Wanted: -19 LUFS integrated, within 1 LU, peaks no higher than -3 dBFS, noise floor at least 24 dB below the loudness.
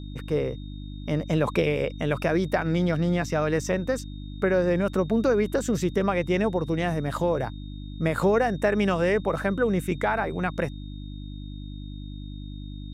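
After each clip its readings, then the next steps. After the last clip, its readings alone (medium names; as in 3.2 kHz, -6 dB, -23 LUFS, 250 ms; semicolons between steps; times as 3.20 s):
hum 50 Hz; highest harmonic 300 Hz; hum level -34 dBFS; steady tone 3.7 kHz; tone level -51 dBFS; loudness -25.5 LUFS; peak level -10.5 dBFS; loudness target -19.0 LUFS
-> de-hum 50 Hz, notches 6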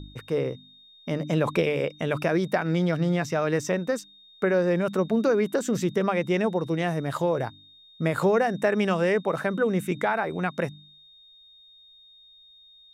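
hum not found; steady tone 3.7 kHz; tone level -51 dBFS
-> band-stop 3.7 kHz, Q 30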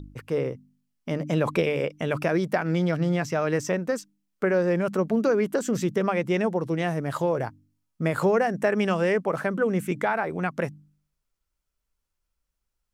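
steady tone not found; loudness -26.0 LUFS; peak level -11.0 dBFS; loudness target -19.0 LUFS
-> trim +7 dB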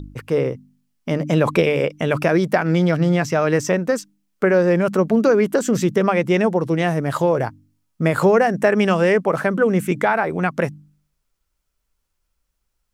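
loudness -19.0 LUFS; peak level -4.0 dBFS; noise floor -74 dBFS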